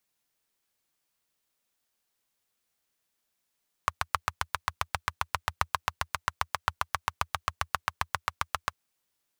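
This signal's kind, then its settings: single-cylinder engine model, steady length 4.85 s, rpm 900, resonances 83/1100 Hz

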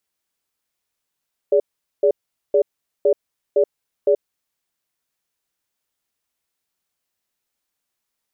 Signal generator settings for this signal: cadence 413 Hz, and 577 Hz, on 0.08 s, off 0.43 s, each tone -14.5 dBFS 2.64 s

